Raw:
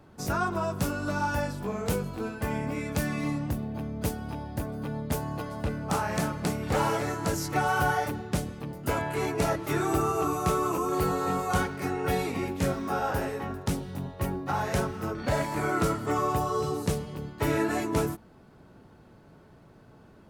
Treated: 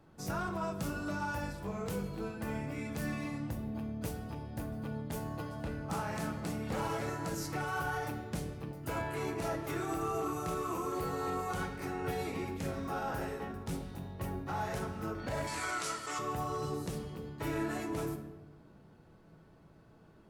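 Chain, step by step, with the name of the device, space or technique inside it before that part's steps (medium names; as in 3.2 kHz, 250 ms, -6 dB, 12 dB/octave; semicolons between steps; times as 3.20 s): limiter into clipper (peak limiter -20 dBFS, peak gain reduction 6.5 dB; hard clipper -22.5 dBFS, distortion -25 dB); 15.47–16.19 s: frequency weighting ITU-R 468; simulated room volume 500 m³, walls mixed, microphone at 0.67 m; trim -7.5 dB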